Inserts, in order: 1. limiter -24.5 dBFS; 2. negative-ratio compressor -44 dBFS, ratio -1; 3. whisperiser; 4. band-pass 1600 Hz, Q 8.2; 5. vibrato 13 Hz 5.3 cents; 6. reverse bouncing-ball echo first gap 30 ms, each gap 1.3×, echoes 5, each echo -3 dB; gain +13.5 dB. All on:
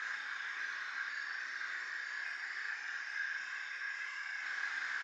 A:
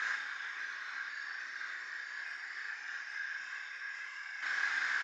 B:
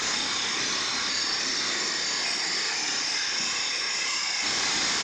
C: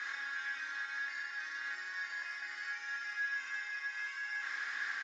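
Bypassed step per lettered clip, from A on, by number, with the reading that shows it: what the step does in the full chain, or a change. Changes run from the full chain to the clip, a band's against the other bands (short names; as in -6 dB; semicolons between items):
1, mean gain reduction 5.0 dB; 4, crest factor change -2.5 dB; 3, crest factor change -3.0 dB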